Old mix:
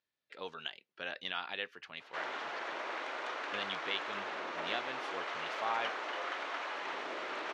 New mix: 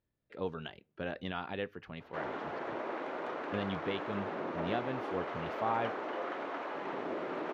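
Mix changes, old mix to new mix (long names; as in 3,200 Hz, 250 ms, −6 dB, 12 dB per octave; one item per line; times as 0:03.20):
speech: send +9.5 dB
master: remove meter weighting curve ITU-R 468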